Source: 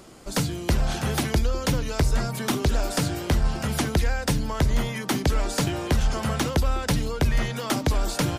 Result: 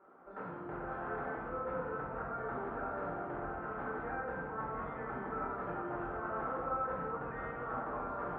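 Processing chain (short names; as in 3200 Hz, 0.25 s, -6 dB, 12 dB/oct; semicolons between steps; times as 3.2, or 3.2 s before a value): rattling part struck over -24 dBFS, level -30 dBFS; elliptic low-pass 1400 Hz, stop band 80 dB; differentiator; limiter -41.5 dBFS, peak gain reduction 7.5 dB; reverb RT60 2.3 s, pre-delay 5 ms, DRR -8.5 dB; gain +2 dB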